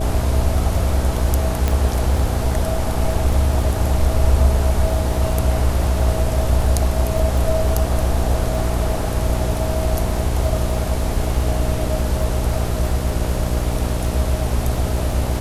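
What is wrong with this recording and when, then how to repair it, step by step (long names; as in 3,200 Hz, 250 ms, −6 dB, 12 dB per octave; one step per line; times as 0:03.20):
mains buzz 60 Hz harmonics 9 −23 dBFS
surface crackle 21 per second −25 dBFS
0:01.68: click −5 dBFS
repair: click removal
hum removal 60 Hz, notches 9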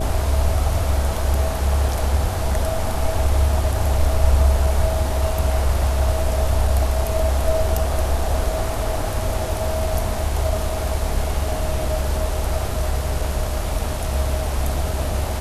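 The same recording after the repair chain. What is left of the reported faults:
none of them is left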